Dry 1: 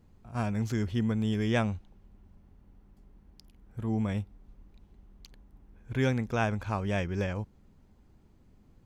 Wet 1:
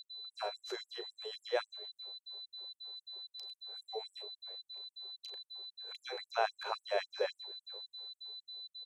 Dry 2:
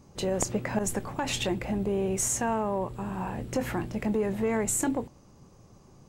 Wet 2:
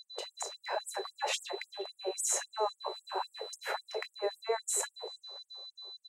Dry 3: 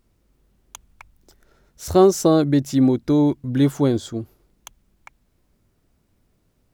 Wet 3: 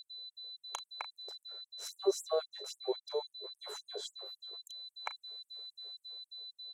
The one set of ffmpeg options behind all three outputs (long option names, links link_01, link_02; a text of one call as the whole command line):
ffmpeg -i in.wav -filter_complex "[0:a]lowpass=11000,tiltshelf=frequency=1100:gain=7.5,bandreject=frequency=206.8:width_type=h:width=4,bandreject=frequency=413.6:width_type=h:width=4,bandreject=frequency=620.4:width_type=h:width=4,dynaudnorm=framelen=150:gausssize=11:maxgain=7.5dB,alimiter=limit=-10dB:level=0:latency=1:release=18,acompressor=threshold=-19dB:ratio=12,asplit=2[link_01][link_02];[link_02]adelay=390,highpass=300,lowpass=3400,asoftclip=type=hard:threshold=-22dB,volume=-21dB[link_03];[link_01][link_03]amix=inputs=2:normalize=0,aeval=exprs='val(0)+0.00562*sin(2*PI*4000*n/s)':channel_layout=same,asplit=2[link_04][link_05];[link_05]adelay=36,volume=-12dB[link_06];[link_04][link_06]amix=inputs=2:normalize=0,afftfilt=real='re*gte(b*sr/1024,350*pow(7800/350,0.5+0.5*sin(2*PI*3.7*pts/sr)))':imag='im*gte(b*sr/1024,350*pow(7800/350,0.5+0.5*sin(2*PI*3.7*pts/sr)))':win_size=1024:overlap=0.75,volume=-1dB" out.wav